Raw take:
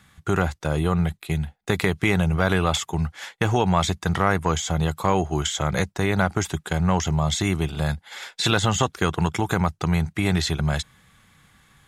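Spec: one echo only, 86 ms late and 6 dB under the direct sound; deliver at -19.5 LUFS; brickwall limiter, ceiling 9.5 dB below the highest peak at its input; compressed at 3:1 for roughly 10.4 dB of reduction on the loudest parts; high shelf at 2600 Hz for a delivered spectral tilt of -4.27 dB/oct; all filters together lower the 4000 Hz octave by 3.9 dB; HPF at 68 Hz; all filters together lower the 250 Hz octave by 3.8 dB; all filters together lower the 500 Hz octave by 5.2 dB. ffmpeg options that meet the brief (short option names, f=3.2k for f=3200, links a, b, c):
-af "highpass=68,equalizer=f=250:t=o:g=-5.5,equalizer=f=500:t=o:g=-5,highshelf=f=2.6k:g=4,equalizer=f=4k:t=o:g=-8,acompressor=threshold=-32dB:ratio=3,alimiter=limit=-22dB:level=0:latency=1,aecho=1:1:86:0.501,volume=15dB"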